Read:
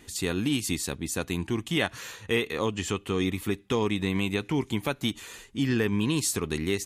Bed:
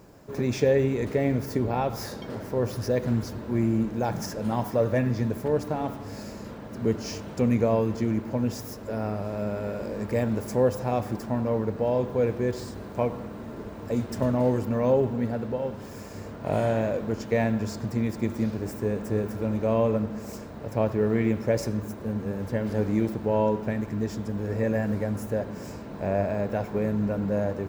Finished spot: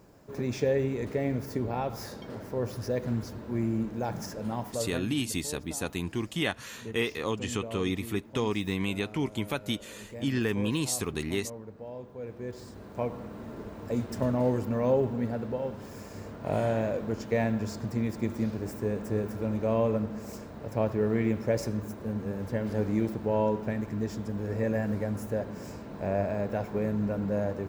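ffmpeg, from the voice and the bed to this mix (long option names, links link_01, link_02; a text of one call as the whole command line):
ffmpeg -i stem1.wav -i stem2.wav -filter_complex "[0:a]adelay=4650,volume=-3dB[link_01];[1:a]volume=8.5dB,afade=type=out:start_time=4.43:duration=0.65:silence=0.266073,afade=type=in:start_time=12.19:duration=1.24:silence=0.211349[link_02];[link_01][link_02]amix=inputs=2:normalize=0" out.wav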